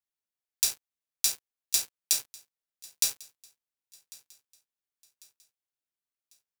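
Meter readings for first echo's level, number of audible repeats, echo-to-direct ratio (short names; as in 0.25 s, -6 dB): -23.0 dB, 2, -22.0 dB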